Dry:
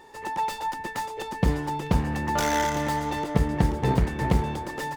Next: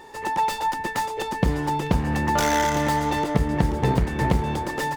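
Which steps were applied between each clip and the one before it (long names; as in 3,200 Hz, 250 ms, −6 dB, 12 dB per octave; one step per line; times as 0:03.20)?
downward compressor 3 to 1, threshold −23 dBFS, peak gain reduction 6 dB
level +5.5 dB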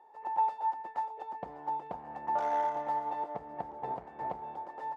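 resonant band-pass 760 Hz, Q 3.6
expander for the loud parts 1.5 to 1, over −36 dBFS
level −1.5 dB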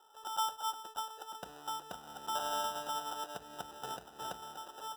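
decimation without filtering 20×
level −5.5 dB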